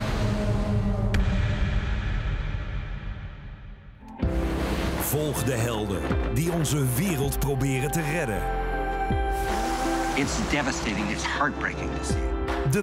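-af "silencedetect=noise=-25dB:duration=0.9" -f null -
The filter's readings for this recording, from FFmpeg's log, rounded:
silence_start: 3.11
silence_end: 4.23 | silence_duration: 1.11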